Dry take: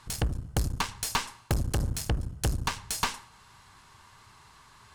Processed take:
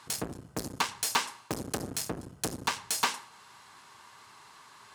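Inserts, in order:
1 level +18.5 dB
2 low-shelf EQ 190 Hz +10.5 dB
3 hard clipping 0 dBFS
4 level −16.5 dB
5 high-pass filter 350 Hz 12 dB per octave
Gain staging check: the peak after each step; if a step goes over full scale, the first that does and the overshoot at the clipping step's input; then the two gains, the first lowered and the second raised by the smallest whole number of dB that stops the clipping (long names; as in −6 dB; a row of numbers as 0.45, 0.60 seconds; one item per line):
+3.5, +8.5, 0.0, −16.5, −13.0 dBFS
step 1, 8.5 dB
step 1 +9.5 dB, step 4 −7.5 dB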